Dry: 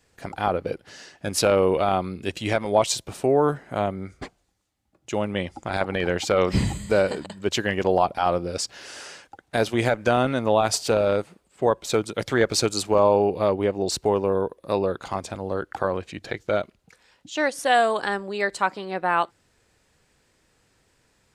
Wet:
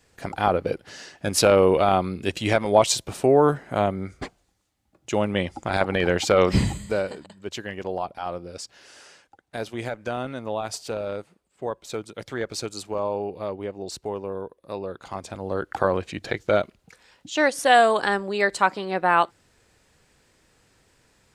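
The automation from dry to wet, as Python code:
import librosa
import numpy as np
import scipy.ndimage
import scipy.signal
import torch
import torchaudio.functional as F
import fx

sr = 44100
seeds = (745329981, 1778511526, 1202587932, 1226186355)

y = fx.gain(x, sr, db=fx.line((6.53, 2.5), (7.21, -9.0), (14.82, -9.0), (15.78, 3.0)))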